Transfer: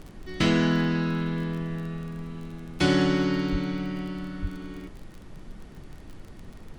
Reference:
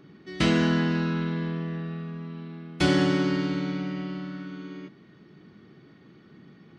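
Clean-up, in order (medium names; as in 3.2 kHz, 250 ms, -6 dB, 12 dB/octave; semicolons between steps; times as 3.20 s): de-click; de-plosive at 3.51/4.41 s; noise print and reduce 9 dB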